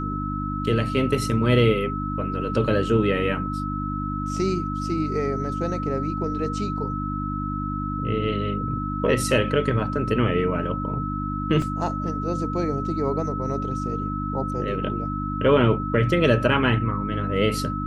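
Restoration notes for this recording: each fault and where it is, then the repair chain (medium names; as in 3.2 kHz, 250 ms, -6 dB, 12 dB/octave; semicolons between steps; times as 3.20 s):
hum 50 Hz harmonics 6 -29 dBFS
whine 1.3 kHz -30 dBFS
11.62 s: dropout 2.4 ms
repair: band-stop 1.3 kHz, Q 30; de-hum 50 Hz, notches 6; interpolate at 11.62 s, 2.4 ms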